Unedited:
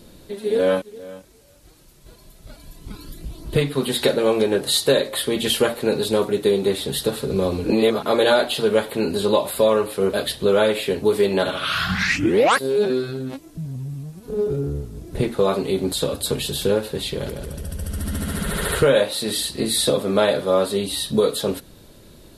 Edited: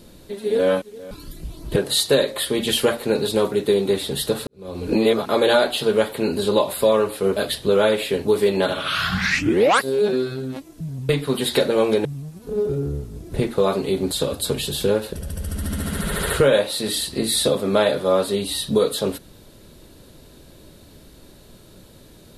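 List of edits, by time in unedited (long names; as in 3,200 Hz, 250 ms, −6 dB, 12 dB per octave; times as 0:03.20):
0:01.11–0:02.92: remove
0:03.57–0:04.53: move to 0:13.86
0:07.24–0:07.67: fade in quadratic
0:16.94–0:17.55: remove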